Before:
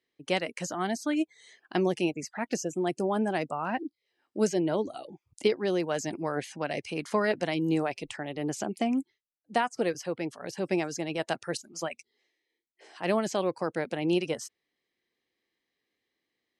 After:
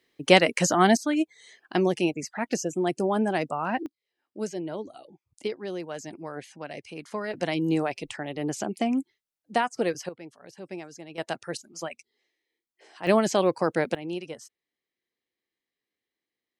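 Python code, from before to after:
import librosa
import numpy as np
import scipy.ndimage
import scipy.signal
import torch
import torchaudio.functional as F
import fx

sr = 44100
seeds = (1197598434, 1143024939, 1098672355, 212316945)

y = fx.gain(x, sr, db=fx.steps((0.0, 11.5), (0.97, 3.0), (3.86, -6.0), (7.34, 2.0), (10.09, -10.0), (11.18, -1.0), (13.07, 6.0), (13.95, -7.0)))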